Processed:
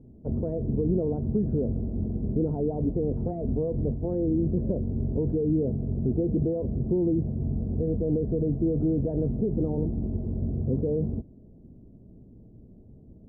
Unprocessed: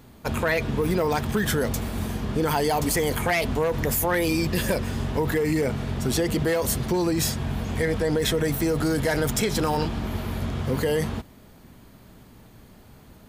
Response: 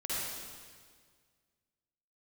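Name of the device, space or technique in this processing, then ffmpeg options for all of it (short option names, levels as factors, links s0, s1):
under water: -af "lowpass=f=420:w=0.5412,lowpass=f=420:w=1.3066,equalizer=f=670:t=o:w=0.48:g=5.5"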